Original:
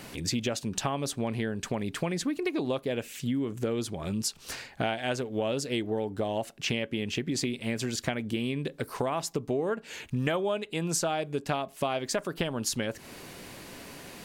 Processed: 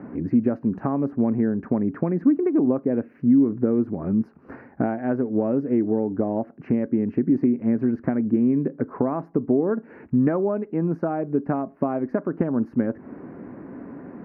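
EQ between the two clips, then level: HPF 51 Hz; inverse Chebyshev low-pass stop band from 3200 Hz, stop band 40 dB; bell 260 Hz +14 dB 1.3 oct; 0.0 dB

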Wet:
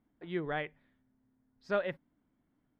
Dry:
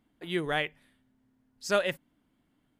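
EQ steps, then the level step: air absorption 360 m; bell 2800 Hz -5.5 dB 0.39 oct; -3.5 dB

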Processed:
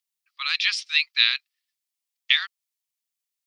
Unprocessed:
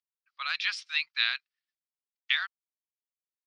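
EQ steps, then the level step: tilt shelf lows -9.5 dB, about 1100 Hz; bell 1500 Hz -7.5 dB 0.21 oct; +1.5 dB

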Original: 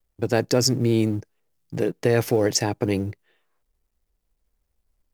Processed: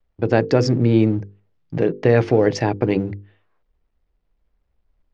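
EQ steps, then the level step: brick-wall FIR low-pass 10000 Hz; air absorption 270 m; notches 50/100/150/200/250/300/350/400/450/500 Hz; +6.0 dB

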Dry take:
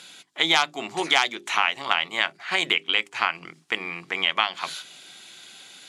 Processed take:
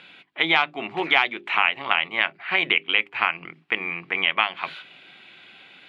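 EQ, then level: air absorption 450 m; bell 2500 Hz +8.5 dB 0.76 oct; +2.0 dB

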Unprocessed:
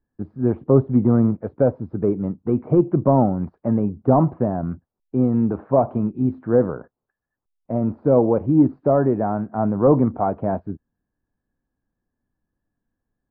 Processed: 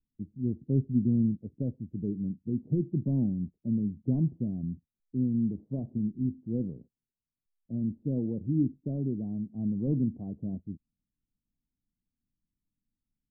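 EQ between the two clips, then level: ladder low-pass 280 Hz, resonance 20%; bell 90 Hz -5.5 dB 2 oct; 0.0 dB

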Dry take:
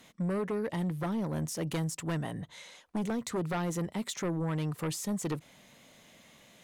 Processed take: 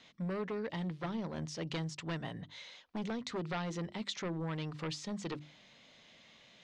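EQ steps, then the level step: LPF 4700 Hz 24 dB/oct; high shelf 2900 Hz +11.5 dB; notches 50/100/150/200/250/300/350 Hz; -5.5 dB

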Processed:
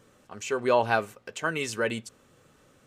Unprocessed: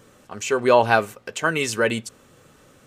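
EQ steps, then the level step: high shelf 11000 Hz -4 dB; -7.0 dB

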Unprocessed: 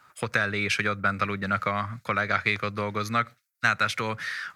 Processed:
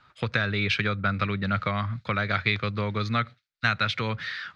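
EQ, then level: synth low-pass 3800 Hz, resonance Q 2.5; low shelf 96 Hz +10 dB; low shelf 410 Hz +6 dB; -4.0 dB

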